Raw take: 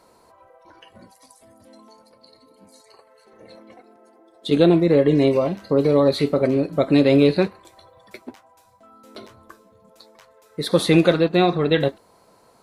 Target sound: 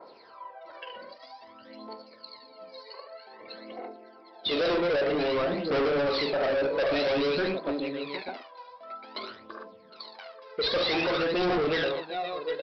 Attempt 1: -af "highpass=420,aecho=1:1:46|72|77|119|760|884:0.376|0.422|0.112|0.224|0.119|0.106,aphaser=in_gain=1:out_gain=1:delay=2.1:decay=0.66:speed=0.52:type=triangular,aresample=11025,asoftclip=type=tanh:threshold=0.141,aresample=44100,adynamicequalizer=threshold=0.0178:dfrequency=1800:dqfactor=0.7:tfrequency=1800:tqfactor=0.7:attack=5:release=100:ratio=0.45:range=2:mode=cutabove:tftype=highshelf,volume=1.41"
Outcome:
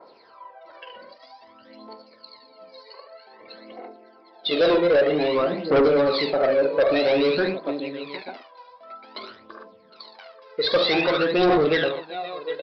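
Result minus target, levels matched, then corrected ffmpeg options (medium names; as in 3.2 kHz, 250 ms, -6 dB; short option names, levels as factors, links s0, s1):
saturation: distortion -5 dB
-af "highpass=420,aecho=1:1:46|72|77|119|760|884:0.376|0.422|0.112|0.224|0.119|0.106,aphaser=in_gain=1:out_gain=1:delay=2.1:decay=0.66:speed=0.52:type=triangular,aresample=11025,asoftclip=type=tanh:threshold=0.0447,aresample=44100,adynamicequalizer=threshold=0.0178:dfrequency=1800:dqfactor=0.7:tfrequency=1800:tqfactor=0.7:attack=5:release=100:ratio=0.45:range=2:mode=cutabove:tftype=highshelf,volume=1.41"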